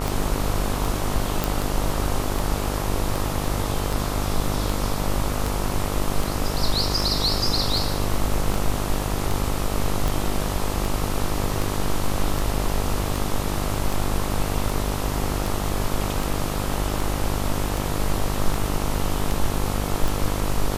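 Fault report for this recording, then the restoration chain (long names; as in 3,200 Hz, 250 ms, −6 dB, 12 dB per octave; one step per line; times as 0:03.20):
mains buzz 50 Hz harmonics 27 −27 dBFS
scratch tick 78 rpm
0:01.44: click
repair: click removal
hum removal 50 Hz, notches 27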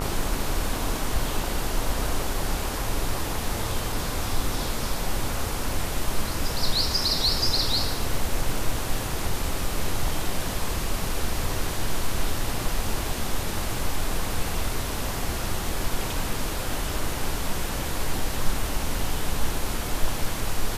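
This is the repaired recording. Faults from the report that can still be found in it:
none of them is left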